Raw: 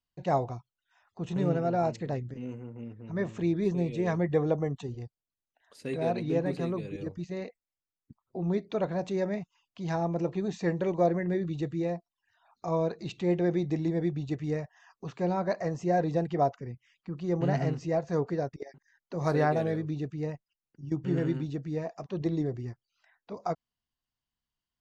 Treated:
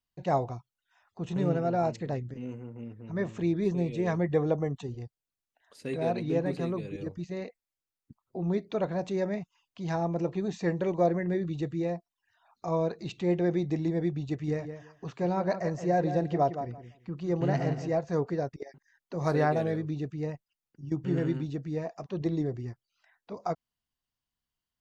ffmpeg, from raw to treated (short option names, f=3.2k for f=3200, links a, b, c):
-filter_complex "[0:a]asettb=1/sr,asplit=3[a][b][c];[a]atrim=end=14.314[d];[b]atrim=start=14.31:end=17.93,asetpts=PTS-STARTPTS,afade=t=in:d=0.004:c=qsin,afade=t=out:st=3.616:d=0.004:c=qsin,asplit=2[e][f];[f]adelay=169,lowpass=f=3.6k:p=1,volume=-9.5dB,asplit=2[g][h];[h]adelay=169,lowpass=f=3.6k:p=1,volume=0.18,asplit=2[i][j];[j]adelay=169,lowpass=f=3.6k:p=1,volume=0.18[k];[e][g][i][k]amix=inputs=4:normalize=0,atrim=end_sample=159642[l];[c]atrim=start=17.926[m];[d][l]acrossfade=d=0.004:c1=hsin:c2=qsin[n];[n][m]acrossfade=d=0.004:c1=qsin:c2=hsin"